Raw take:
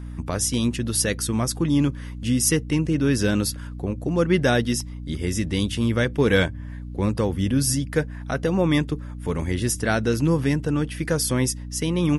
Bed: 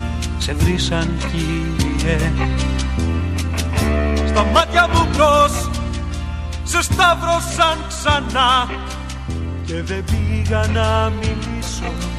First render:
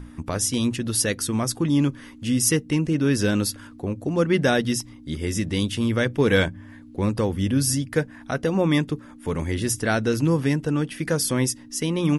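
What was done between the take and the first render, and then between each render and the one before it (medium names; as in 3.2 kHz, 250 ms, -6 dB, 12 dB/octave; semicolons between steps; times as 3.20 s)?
hum notches 60/120/180 Hz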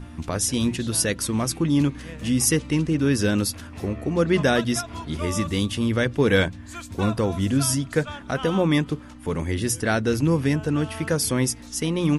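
add bed -21 dB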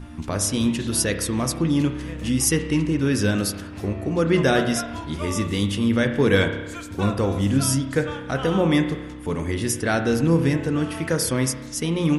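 spring tank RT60 1.1 s, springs 30 ms, chirp 70 ms, DRR 6.5 dB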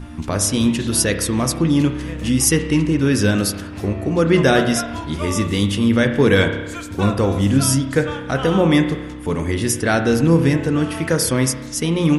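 trim +4.5 dB; peak limiter -2 dBFS, peak gain reduction 2.5 dB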